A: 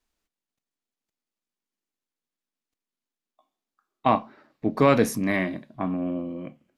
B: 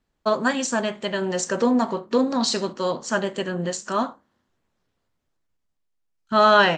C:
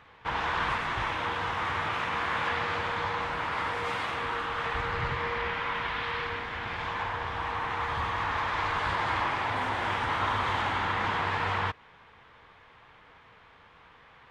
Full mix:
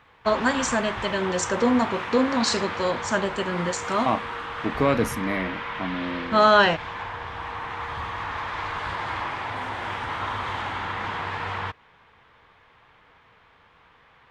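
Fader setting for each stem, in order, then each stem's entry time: -3.0 dB, -1.0 dB, -1.0 dB; 0.00 s, 0.00 s, 0.00 s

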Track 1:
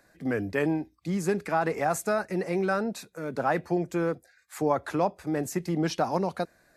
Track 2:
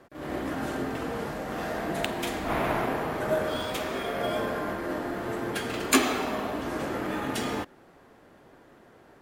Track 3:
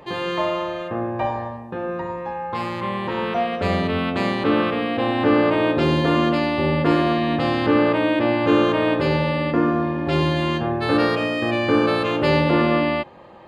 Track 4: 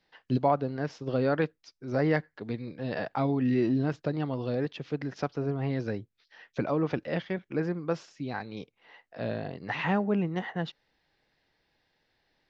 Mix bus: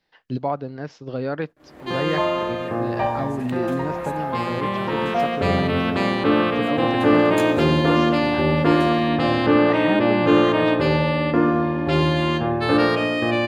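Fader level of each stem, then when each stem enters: -14.5 dB, -12.0 dB, +1.0 dB, 0.0 dB; 2.10 s, 1.45 s, 1.80 s, 0.00 s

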